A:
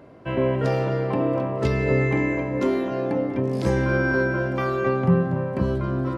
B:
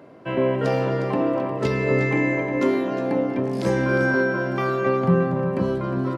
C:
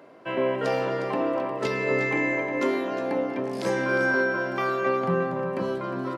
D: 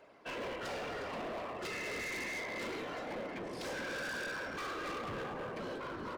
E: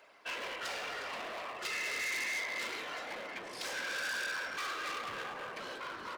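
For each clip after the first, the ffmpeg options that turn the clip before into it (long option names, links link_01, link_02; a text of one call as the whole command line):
ffmpeg -i in.wav -filter_complex "[0:a]highpass=150,asplit=2[link_01][link_02];[link_02]aecho=0:1:358:0.299[link_03];[link_01][link_03]amix=inputs=2:normalize=0,volume=1.5dB" out.wav
ffmpeg -i in.wav -af "highpass=frequency=500:poles=1" out.wav
ffmpeg -i in.wav -af "afftfilt=real='hypot(re,im)*cos(2*PI*random(0))':imag='hypot(re,im)*sin(2*PI*random(1))':win_size=512:overlap=0.75,equalizer=frequency=4100:width=0.31:gain=9,volume=31.5dB,asoftclip=hard,volume=-31.5dB,volume=-6.5dB" out.wav
ffmpeg -i in.wav -af "tiltshelf=frequency=640:gain=-9.5,volume=-3dB" out.wav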